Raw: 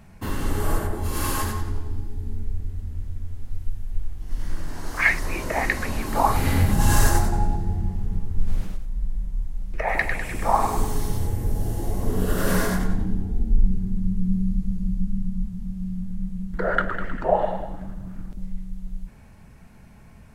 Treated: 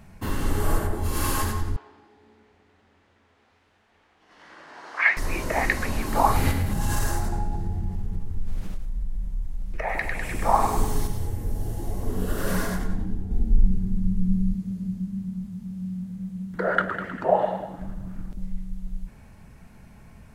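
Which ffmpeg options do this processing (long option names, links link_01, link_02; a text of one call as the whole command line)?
ffmpeg -i in.wav -filter_complex "[0:a]asettb=1/sr,asplit=3[link_01][link_02][link_03];[link_01]atrim=end=1.764[link_04];[link_02]atrim=start=1.76:end=5.17,asetpts=PTS-STARTPTS,afade=type=in:duration=0.004:curve=qsin,afade=type=out:start_time=3.406:duration=0.004:curve=qsin,highpass=620,lowpass=3200[link_05];[link_03]atrim=start=5.166[link_06];[link_04][link_05]acrossfade=duration=0.004:curve1=hsin:curve2=qsin[link_07];[link_07][link_06]acrossfade=duration=0.004:curve1=qsin:curve2=hsin,asettb=1/sr,asplit=3[link_08][link_09][link_10];[link_08]atrim=end=6.514[link_11];[link_09]atrim=start=6.51:end=10.23,asetpts=PTS-STARTPTS,afade=type=in:duration=0.004:curve=qsin,afade=type=out:start_time=3.716:duration=0.004:curve=qsin,acompressor=threshold=-25dB:ratio=2:attack=3.2:release=140:knee=1:detection=peak[link_12];[link_10]atrim=start=10.226[link_13];[link_11][link_12]acrossfade=duration=0.004:curve1=hsin:curve2=qsin[link_14];[link_14][link_13]acrossfade=duration=0.004:curve1=qsin:curve2=hsin,asettb=1/sr,asplit=3[link_15][link_16][link_17];[link_15]atrim=end=11.074[link_18];[link_16]atrim=start=11.07:end=13.31,asetpts=PTS-STARTPTS,afade=type=in:duration=0.004:curve=qsin,afade=type=out:start_time=2.236:duration=0.004:curve=qsin,flanger=delay=0.7:depth=3.5:regen=-66:speed=1.3:shape=triangular[link_19];[link_17]atrim=start=13.306[link_20];[link_18][link_19]acrossfade=duration=0.004:curve1=hsin:curve2=qsin[link_21];[link_21][link_20]acrossfade=duration=0.004:curve1=qsin:curve2=hsin,asettb=1/sr,asplit=3[link_22][link_23][link_24];[link_22]atrim=end=14.544[link_25];[link_23]atrim=start=14.54:end=17.79,asetpts=PTS-STARTPTS,afade=type=in:duration=0.004:curve=qsin,afade=type=out:start_time=3.246:duration=0.004:curve=qsin,highpass=120[link_26];[link_24]atrim=start=17.786[link_27];[link_25][link_26]acrossfade=duration=0.004:curve1=hsin:curve2=qsin[link_28];[link_28][link_27]acrossfade=duration=0.004:curve1=qsin:curve2=hsin" out.wav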